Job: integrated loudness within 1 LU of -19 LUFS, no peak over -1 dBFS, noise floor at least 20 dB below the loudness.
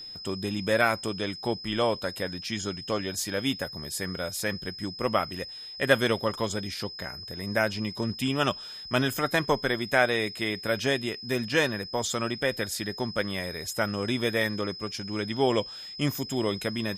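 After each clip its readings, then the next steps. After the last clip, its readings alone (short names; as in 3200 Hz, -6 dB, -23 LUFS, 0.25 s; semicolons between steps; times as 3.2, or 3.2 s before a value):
ticks 26/s; steady tone 5100 Hz; tone level -39 dBFS; loudness -28.5 LUFS; peak -6.5 dBFS; loudness target -19.0 LUFS
-> de-click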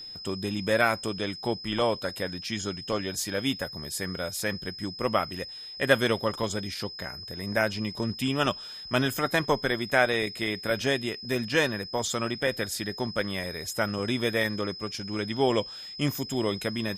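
ticks 0/s; steady tone 5100 Hz; tone level -39 dBFS
-> notch 5100 Hz, Q 30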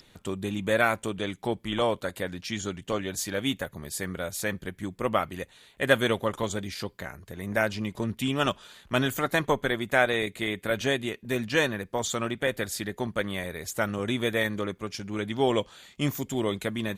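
steady tone none; loudness -29.0 LUFS; peak -7.0 dBFS; loudness target -19.0 LUFS
-> gain +10 dB; limiter -1 dBFS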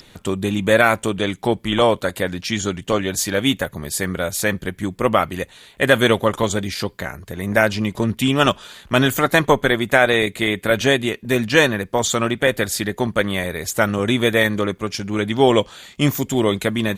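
loudness -19.0 LUFS; peak -1.0 dBFS; noise floor -48 dBFS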